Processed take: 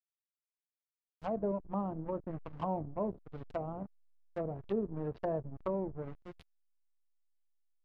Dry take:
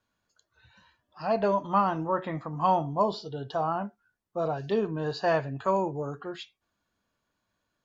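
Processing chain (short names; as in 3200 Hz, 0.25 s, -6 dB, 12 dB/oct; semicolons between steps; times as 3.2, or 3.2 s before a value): backlash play -27 dBFS; treble ducked by the level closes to 500 Hz, closed at -26.5 dBFS; gain -4.5 dB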